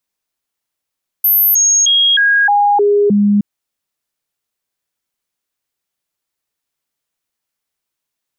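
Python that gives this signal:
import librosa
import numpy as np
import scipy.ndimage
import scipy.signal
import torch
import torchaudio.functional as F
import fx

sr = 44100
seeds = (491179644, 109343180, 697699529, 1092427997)

y = fx.stepped_sweep(sr, from_hz=13100.0, direction='down', per_octave=1, tones=7, dwell_s=0.31, gap_s=0.0, level_db=-8.0)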